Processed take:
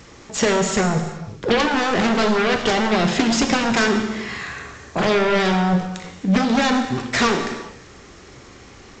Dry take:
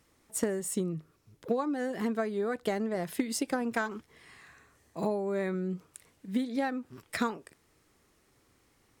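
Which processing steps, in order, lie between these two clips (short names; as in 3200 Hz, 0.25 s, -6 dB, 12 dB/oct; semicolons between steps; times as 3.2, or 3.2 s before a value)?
in parallel at -10 dB: sine folder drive 19 dB, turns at -17.5 dBFS; on the sum: non-linear reverb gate 0.44 s falling, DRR 4 dB; gain +8.5 dB; G.722 64 kbps 16000 Hz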